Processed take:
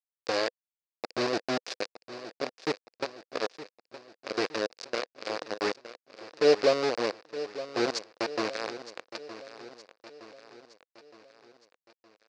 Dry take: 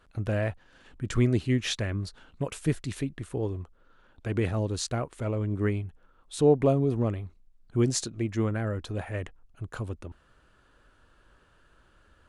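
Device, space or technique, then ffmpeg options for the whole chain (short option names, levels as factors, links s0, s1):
hand-held game console: -af "acrusher=bits=3:mix=0:aa=0.000001,highpass=440,equalizer=f=500:t=q:w=4:g=7,equalizer=f=890:t=q:w=4:g=-5,equalizer=f=1300:t=q:w=4:g=-3,equalizer=f=2000:t=q:w=4:g=-4,equalizer=f=3200:t=q:w=4:g=-8,equalizer=f=4800:t=q:w=4:g=6,lowpass=f=5200:w=0.5412,lowpass=f=5200:w=1.3066,aecho=1:1:916|1832|2748|3664|4580:0.2|0.104|0.054|0.0281|0.0146"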